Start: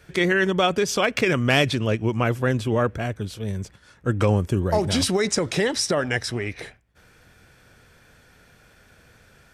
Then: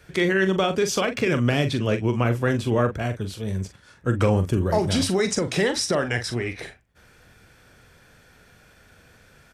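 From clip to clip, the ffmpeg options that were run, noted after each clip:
-filter_complex "[0:a]acrossover=split=480[s0][s1];[s1]alimiter=limit=0.188:level=0:latency=1:release=268[s2];[s0][s2]amix=inputs=2:normalize=0,asplit=2[s3][s4];[s4]adelay=42,volume=0.355[s5];[s3][s5]amix=inputs=2:normalize=0"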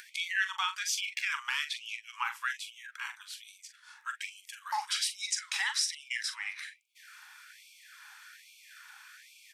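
-af "acompressor=mode=upward:threshold=0.0158:ratio=2.5,afftfilt=real='re*gte(b*sr/1024,770*pow(2200/770,0.5+0.5*sin(2*PI*1.2*pts/sr)))':imag='im*gte(b*sr/1024,770*pow(2200/770,0.5+0.5*sin(2*PI*1.2*pts/sr)))':win_size=1024:overlap=0.75,volume=0.668"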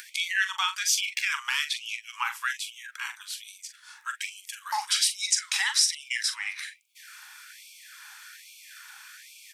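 -af "highshelf=f=3900:g=7.5,volume=1.41"

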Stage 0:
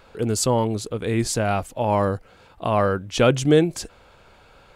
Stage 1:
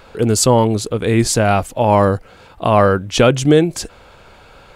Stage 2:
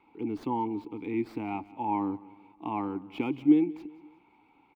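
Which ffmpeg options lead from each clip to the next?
-af "alimiter=limit=0.355:level=0:latency=1:release=376,volume=2.51"
-filter_complex "[0:a]asplit=3[s0][s1][s2];[s0]bandpass=f=300:t=q:w=8,volume=1[s3];[s1]bandpass=f=870:t=q:w=8,volume=0.501[s4];[s2]bandpass=f=2240:t=q:w=8,volume=0.355[s5];[s3][s4][s5]amix=inputs=3:normalize=0,acrossover=split=320|4300[s6][s7][s8];[s8]acrusher=samples=18:mix=1:aa=0.000001:lfo=1:lforange=10.8:lforate=1.3[s9];[s6][s7][s9]amix=inputs=3:normalize=0,aecho=1:1:182|364|546:0.0944|0.0425|0.0191,volume=0.596"

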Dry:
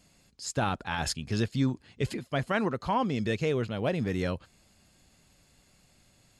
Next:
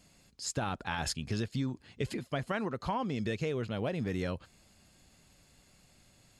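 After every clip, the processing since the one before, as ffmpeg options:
-af "acompressor=threshold=0.0316:ratio=5"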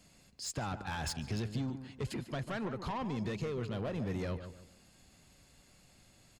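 -filter_complex "[0:a]acrossover=split=120[s0][s1];[s1]asoftclip=type=tanh:threshold=0.0211[s2];[s0][s2]amix=inputs=2:normalize=0,asplit=2[s3][s4];[s4]adelay=146,lowpass=f=1800:p=1,volume=0.316,asplit=2[s5][s6];[s6]adelay=146,lowpass=f=1800:p=1,volume=0.34,asplit=2[s7][s8];[s8]adelay=146,lowpass=f=1800:p=1,volume=0.34,asplit=2[s9][s10];[s10]adelay=146,lowpass=f=1800:p=1,volume=0.34[s11];[s3][s5][s7][s9][s11]amix=inputs=5:normalize=0"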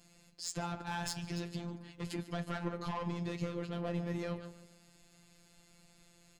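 -af "flanger=delay=8.5:depth=9.6:regen=-66:speed=0.54:shape=triangular,afftfilt=real='hypot(re,im)*cos(PI*b)':imag='0':win_size=1024:overlap=0.75,volume=2.24"

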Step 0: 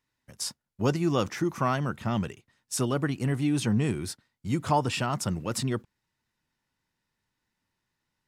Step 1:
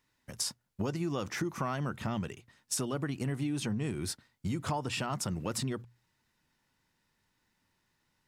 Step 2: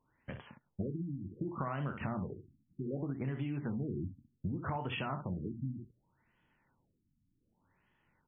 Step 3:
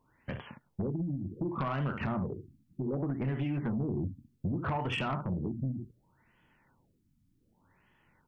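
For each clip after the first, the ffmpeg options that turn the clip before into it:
-filter_complex "[0:a]asplit=2[s0][s1];[s1]alimiter=limit=0.0944:level=0:latency=1,volume=0.794[s2];[s0][s2]amix=inputs=2:normalize=0,acompressor=threshold=0.0282:ratio=6,bandreject=f=60:t=h:w=6,bandreject=f=120:t=h:w=6"
-af "aecho=1:1:22|62:0.335|0.335,acompressor=threshold=0.0158:ratio=6,afftfilt=real='re*lt(b*sr/1024,300*pow(3500/300,0.5+0.5*sin(2*PI*0.66*pts/sr)))':imag='im*lt(b*sr/1024,300*pow(3500/300,0.5+0.5*sin(2*PI*0.66*pts/sr)))':win_size=1024:overlap=0.75,volume=1.33"
-af "aeval=exprs='0.075*(cos(1*acos(clip(val(0)/0.075,-1,1)))-cos(1*PI/2))+0.0168*(cos(5*acos(clip(val(0)/0.075,-1,1)))-cos(5*PI/2))':c=same"

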